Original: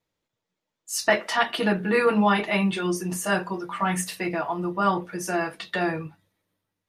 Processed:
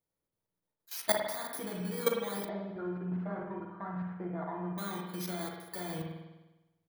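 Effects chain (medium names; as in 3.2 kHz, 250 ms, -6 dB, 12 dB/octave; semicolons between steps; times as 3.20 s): bit-reversed sample order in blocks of 16 samples; 2.46–4.78 s: low-pass 1.6 kHz 24 dB/octave; level held to a coarse grid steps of 17 dB; doubling 39 ms -14 dB; spring tank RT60 1.1 s, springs 50 ms, chirp 35 ms, DRR 1.5 dB; trim -6 dB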